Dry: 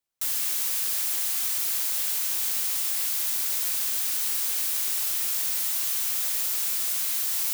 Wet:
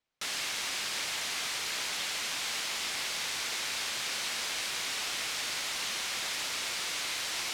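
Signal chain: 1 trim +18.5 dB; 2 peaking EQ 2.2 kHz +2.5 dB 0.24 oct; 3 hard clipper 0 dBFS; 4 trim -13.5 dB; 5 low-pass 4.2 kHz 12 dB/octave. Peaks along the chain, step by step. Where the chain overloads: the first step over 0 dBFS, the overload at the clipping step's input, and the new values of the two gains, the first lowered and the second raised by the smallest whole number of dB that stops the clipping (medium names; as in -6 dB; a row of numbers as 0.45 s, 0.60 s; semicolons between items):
+4.5 dBFS, +4.5 dBFS, 0.0 dBFS, -13.5 dBFS, -21.5 dBFS; step 1, 4.5 dB; step 1 +13.5 dB, step 4 -8.5 dB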